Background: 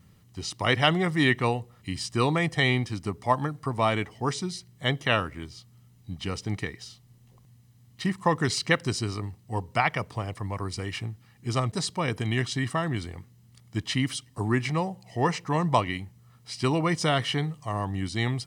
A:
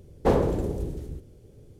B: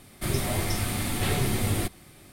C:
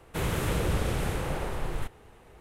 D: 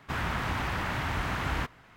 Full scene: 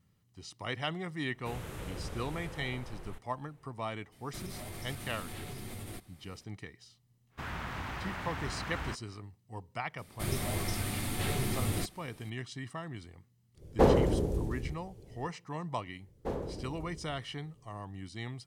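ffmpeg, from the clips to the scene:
-filter_complex "[2:a]asplit=2[s0][s1];[1:a]asplit=2[s2][s3];[0:a]volume=0.211[s4];[s0]acompressor=threshold=0.0447:ratio=6:attack=3.2:release=140:knee=1:detection=peak[s5];[3:a]atrim=end=2.4,asetpts=PTS-STARTPTS,volume=0.211,afade=t=in:d=0.004:c=hsin,afade=t=out:st=2.396:d=0.004:c=hsin,adelay=1310[s6];[s5]atrim=end=2.32,asetpts=PTS-STARTPTS,volume=0.266,afade=t=in:d=0.004:c=hsin,afade=t=out:st=2.316:d=0.004:c=hsin,adelay=4120[s7];[4:a]atrim=end=1.96,asetpts=PTS-STARTPTS,volume=0.398,afade=t=in:d=0.1,afade=t=out:st=1.86:d=0.1,adelay=7290[s8];[s1]atrim=end=2.32,asetpts=PTS-STARTPTS,volume=0.473,afade=t=in:d=0.004:c=hsin,afade=t=out:st=2.316:d=0.004:c=hsin,adelay=9980[s9];[s2]atrim=end=1.79,asetpts=PTS-STARTPTS,volume=0.841,afade=t=in:d=0.1,afade=t=out:st=1.69:d=0.1,adelay=13540[s10];[s3]atrim=end=1.79,asetpts=PTS-STARTPTS,volume=0.178,afade=t=in:d=0.004:c=hsin,afade=t=out:st=1.786:d=0.004:c=hsin,adelay=16000[s11];[s4][s6][s7][s8][s9][s10][s11]amix=inputs=7:normalize=0"

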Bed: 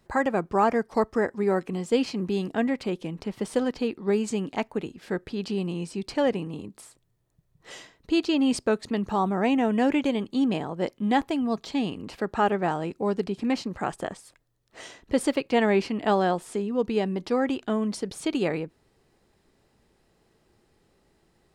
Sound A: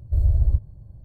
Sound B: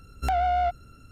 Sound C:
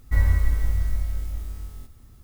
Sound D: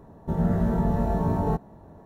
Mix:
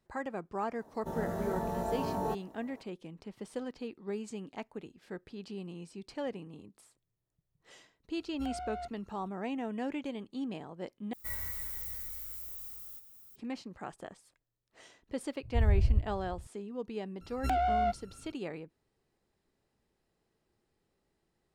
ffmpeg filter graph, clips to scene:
-filter_complex "[2:a]asplit=2[s0][s1];[0:a]volume=0.211[s2];[4:a]bass=f=250:g=-14,treble=f=4000:g=9[s3];[3:a]aemphasis=mode=production:type=riaa[s4];[1:a]aecho=1:1:417:0.0944[s5];[s2]asplit=2[s6][s7];[s6]atrim=end=11.134[s8];[s4]atrim=end=2.23,asetpts=PTS-STARTPTS,volume=0.224[s9];[s7]atrim=start=13.356[s10];[s3]atrim=end=2.05,asetpts=PTS-STARTPTS,volume=0.596,afade=t=in:d=0.004:c=hsin,afade=t=out:st=2.046:d=0.004:c=hsin,adelay=780[s11];[s0]atrim=end=1.11,asetpts=PTS-STARTPTS,volume=0.141,afade=t=in:d=0.004:c=hsin,afade=t=out:st=1.106:d=0.004:c=hsin,adelay=8170[s12];[s5]atrim=end=1.04,asetpts=PTS-STARTPTS,volume=0.447,afade=t=in:d=0.004:c=hsin,afade=t=out:st=1.036:d=0.004:c=hsin,adelay=15430[s13];[s1]atrim=end=1.11,asetpts=PTS-STARTPTS,volume=0.562,afade=t=in:d=0.004:c=hsin,afade=t=out:st=1.106:d=0.004:c=hsin,adelay=17210[s14];[s8][s9]acrossfade=d=0.004:c1=hsin:c2=hsin[s15];[s15][s10]acrossfade=d=0.004:c1=hsin:c2=hsin[s16];[s16][s11][s12][s13][s14]amix=inputs=5:normalize=0"

